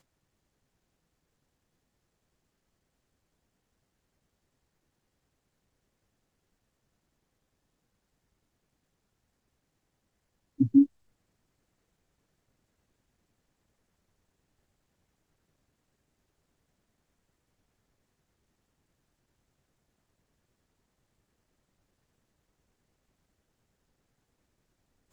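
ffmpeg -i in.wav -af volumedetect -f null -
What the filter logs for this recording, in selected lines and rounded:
mean_volume: -40.1 dB
max_volume: -10.6 dB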